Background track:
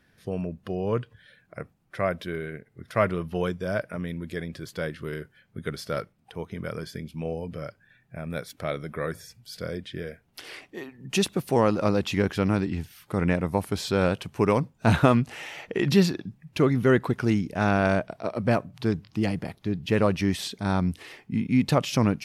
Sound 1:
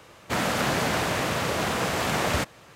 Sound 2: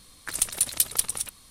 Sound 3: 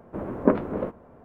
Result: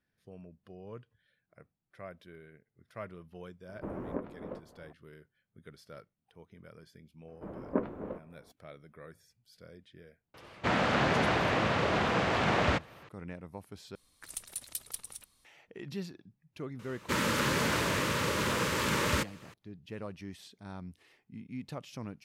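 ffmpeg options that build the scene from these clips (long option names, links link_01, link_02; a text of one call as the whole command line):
ffmpeg -i bed.wav -i cue0.wav -i cue1.wav -i cue2.wav -filter_complex "[3:a]asplit=2[link_01][link_02];[1:a]asplit=2[link_03][link_04];[0:a]volume=-19.5dB[link_05];[link_01]acompressor=threshold=-29dB:ratio=4:attack=13:release=562:knee=1:detection=rms[link_06];[link_03]lowpass=3500[link_07];[link_04]asuperstop=centerf=720:order=4:qfactor=2.7[link_08];[link_05]asplit=2[link_09][link_10];[link_09]atrim=end=13.954[link_11];[2:a]atrim=end=1.5,asetpts=PTS-STARTPTS,volume=-16dB[link_12];[link_10]atrim=start=15.446[link_13];[link_06]atrim=end=1.24,asetpts=PTS-STARTPTS,volume=-5dB,afade=type=in:duration=0.004:curve=hsin,afade=type=out:start_time=1.236:duration=0.004:curve=hsin,adelay=162729S[link_14];[link_02]atrim=end=1.24,asetpts=PTS-STARTPTS,volume=-11dB,afade=type=in:duration=0.004:curve=hsin,afade=type=out:start_time=1.236:duration=0.004:curve=hsin,adelay=7280[link_15];[link_07]atrim=end=2.75,asetpts=PTS-STARTPTS,volume=-2dB,afade=type=in:duration=0.004:curve=hsin,afade=type=out:start_time=2.746:duration=0.004:curve=hsin,adelay=455994S[link_16];[link_08]atrim=end=2.75,asetpts=PTS-STARTPTS,volume=-3.5dB,afade=type=in:duration=0.004:curve=hsin,afade=type=out:start_time=2.746:duration=0.004:curve=hsin,adelay=16790[link_17];[link_11][link_12]acrossfade=duration=0.004:curve1=hsin:curve2=hsin[link_18];[link_18][link_13]acrossfade=duration=0.004:curve1=hsin:curve2=hsin[link_19];[link_19][link_14][link_15][link_16][link_17]amix=inputs=5:normalize=0" out.wav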